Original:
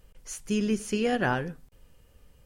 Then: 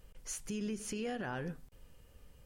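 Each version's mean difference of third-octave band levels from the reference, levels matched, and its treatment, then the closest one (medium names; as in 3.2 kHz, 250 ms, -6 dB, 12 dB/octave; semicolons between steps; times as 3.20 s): 5.0 dB: compression, threshold -30 dBFS, peak gain reduction 8.5 dB; peak limiter -28.5 dBFS, peak gain reduction 7 dB; trim -1.5 dB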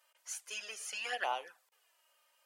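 10.5 dB: high-pass 710 Hz 24 dB/octave; touch-sensitive flanger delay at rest 3.3 ms, full sweep at -27.5 dBFS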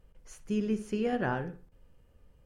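3.5 dB: treble shelf 2.4 kHz -11.5 dB; on a send: filtered feedback delay 61 ms, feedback 32%, low-pass 3.3 kHz, level -12.5 dB; on the sum: trim -3.5 dB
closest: third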